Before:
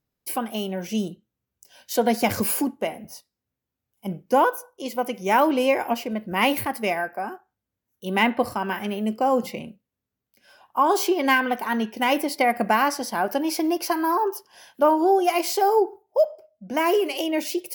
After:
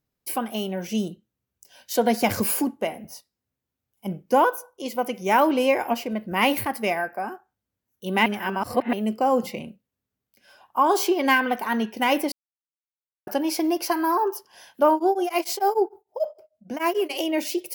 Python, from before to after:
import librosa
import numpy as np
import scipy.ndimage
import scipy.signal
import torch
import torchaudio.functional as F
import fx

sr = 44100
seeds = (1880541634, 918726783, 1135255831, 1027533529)

y = fx.tremolo_abs(x, sr, hz=6.7, at=(14.94, 17.09), fade=0.02)
y = fx.edit(y, sr, fx.reverse_span(start_s=8.26, length_s=0.67),
    fx.silence(start_s=12.32, length_s=0.95), tone=tone)